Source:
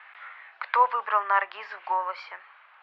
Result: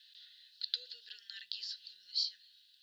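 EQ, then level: inverse Chebyshev band-stop 200–2400 Hz, stop band 40 dB; brick-wall FIR band-stop 510–1400 Hz; peaking EQ 4.1 kHz +8 dB 0.63 oct; +14.0 dB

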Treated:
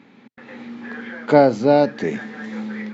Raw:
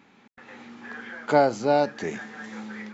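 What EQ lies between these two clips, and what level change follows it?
ten-band graphic EQ 125 Hz +12 dB, 250 Hz +12 dB, 500 Hz +10 dB, 1 kHz +4 dB, 2 kHz +8 dB, 4 kHz +8 dB; -5.5 dB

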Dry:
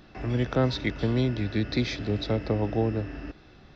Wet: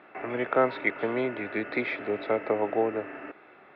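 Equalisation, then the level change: cabinet simulation 400–2500 Hz, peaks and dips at 410 Hz +4 dB, 630 Hz +4 dB, 900 Hz +4 dB, 1.3 kHz +6 dB, 2.2 kHz +7 dB; +1.5 dB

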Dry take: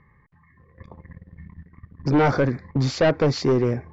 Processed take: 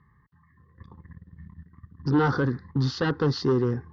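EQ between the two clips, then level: high-pass 46 Hz; dynamic bell 530 Hz, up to +6 dB, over -31 dBFS, Q 1.1; static phaser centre 2.3 kHz, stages 6; -2.0 dB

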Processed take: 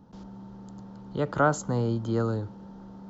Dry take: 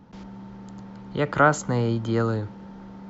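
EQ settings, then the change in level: peaking EQ 2.2 kHz -12 dB 0.86 oct; -3.0 dB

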